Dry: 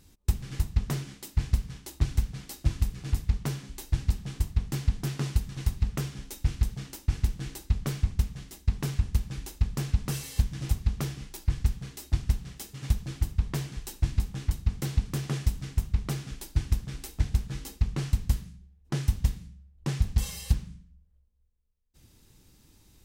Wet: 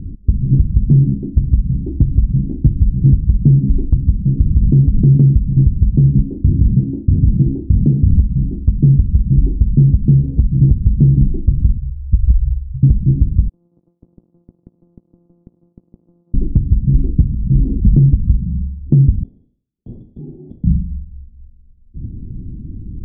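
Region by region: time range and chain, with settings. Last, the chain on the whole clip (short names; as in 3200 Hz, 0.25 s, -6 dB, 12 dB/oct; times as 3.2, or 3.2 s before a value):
4.22–5.15 bell 600 Hz +3 dB 0.25 oct + compressor, threshold -27 dBFS + rippled Chebyshev low-pass 1900 Hz, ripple 3 dB
6.22–8.1 HPF 150 Hz 6 dB/oct + compressor 4:1, threshold -35 dBFS + doubler 33 ms -7 dB
11.77–12.83 inverse Chebyshev low-pass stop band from 510 Hz, stop band 80 dB + compressor 2:1, threshold -38 dBFS
13.49–16.34 sample sorter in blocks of 256 samples + ladder band-pass 1800 Hz, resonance 35% + compressor 10:1, threshold -49 dBFS
17.3–17.85 auto swell 0.461 s + sustainer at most 48 dB/s
19.23–20.64 HPF 230 Hz + tilt -4 dB/oct + inverted band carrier 3500 Hz
whole clip: inverse Chebyshev low-pass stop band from 1600 Hz, stop band 80 dB; compressor 12:1, threshold -34 dBFS; maximiser +33 dB; gain -1 dB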